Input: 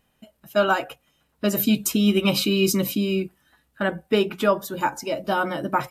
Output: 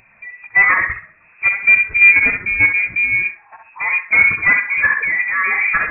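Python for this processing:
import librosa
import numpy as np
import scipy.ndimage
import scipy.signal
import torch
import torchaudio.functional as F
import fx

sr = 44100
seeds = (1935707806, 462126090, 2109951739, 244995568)

y = scipy.signal.sosfilt(scipy.signal.butter(4, 44.0, 'highpass', fs=sr, output='sos'), x)
y = fx.low_shelf(y, sr, hz=170.0, db=-4.0)
y = fx.level_steps(y, sr, step_db=20)
y = fx.power_curve(y, sr, exponent=0.5)
y = fx.fold_sine(y, sr, drive_db=6, ceiling_db=-9.5)
y = fx.echo_banded(y, sr, ms=65, feedback_pct=55, hz=910.0, wet_db=-3.0)
y = fx.freq_invert(y, sr, carrier_hz=2600)
y = fx.spectral_expand(y, sr, expansion=1.5)
y = y * 10.0 ** (1.0 / 20.0)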